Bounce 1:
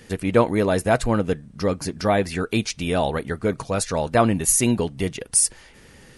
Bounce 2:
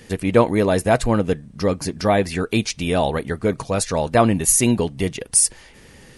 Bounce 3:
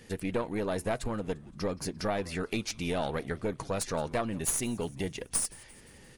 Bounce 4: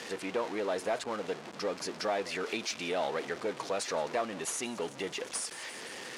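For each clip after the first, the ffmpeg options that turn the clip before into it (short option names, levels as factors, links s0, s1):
-af "equalizer=f=1400:t=o:w=0.3:g=-3.5,volume=1.33"
-filter_complex "[0:a]acompressor=threshold=0.112:ratio=5,aeval=exprs='0.299*(cos(1*acos(clip(val(0)/0.299,-1,1)))-cos(1*PI/2))+0.0944*(cos(2*acos(clip(val(0)/0.299,-1,1)))-cos(2*PI/2))':c=same,asplit=5[s0][s1][s2][s3][s4];[s1]adelay=173,afreqshift=-120,volume=0.0794[s5];[s2]adelay=346,afreqshift=-240,volume=0.0447[s6];[s3]adelay=519,afreqshift=-360,volume=0.0248[s7];[s4]adelay=692,afreqshift=-480,volume=0.014[s8];[s0][s5][s6][s7][s8]amix=inputs=5:normalize=0,volume=0.376"
-af "aeval=exprs='val(0)+0.5*0.0188*sgn(val(0))':c=same,highpass=390,lowpass=6400,asoftclip=type=tanh:threshold=0.106"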